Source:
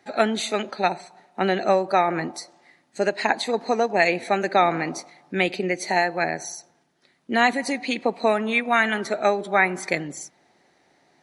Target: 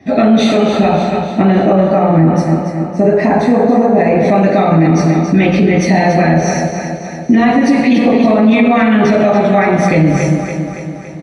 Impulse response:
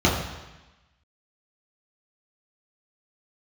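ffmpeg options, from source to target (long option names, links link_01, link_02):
-filter_complex "[0:a]lowshelf=frequency=220:gain=9.5,acompressor=threshold=-21dB:ratio=6,asettb=1/sr,asplit=3[link_01][link_02][link_03];[link_01]atrim=end=1.554[link_04];[link_02]atrim=start=1.55:end=4.17,asetpts=PTS-STARTPTS,afade=type=in:duration=0.004:curve=qsin,afade=type=out:start_time=2.616:duration=0.004:curve=qsin,equalizer=frequency=3600:width=1.2:gain=-14[link_05];[link_03]atrim=start=4.166[link_06];[link_04][link_05]acrossfade=duration=0.004:curve1=hsin:curve2=qsin[link_07];[link_07][link_06]acrossfade=duration=0.004:curve1=qsin:curve2=hsin,aecho=1:1:282|564|846|1128|1410|1692|1974:0.355|0.202|0.115|0.0657|0.0375|0.0213|0.0122[link_08];[1:a]atrim=start_sample=2205,asetrate=38808,aresample=44100[link_09];[link_08][link_09]afir=irnorm=-1:irlink=0,alimiter=level_in=-3.5dB:limit=-1dB:release=50:level=0:latency=1,volume=-1dB"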